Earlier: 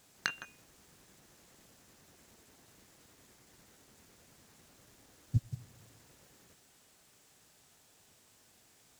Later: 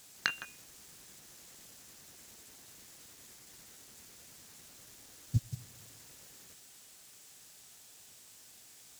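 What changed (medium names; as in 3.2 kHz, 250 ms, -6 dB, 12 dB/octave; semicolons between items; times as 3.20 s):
background: add distance through air 150 m; master: add treble shelf 2.3 kHz +10.5 dB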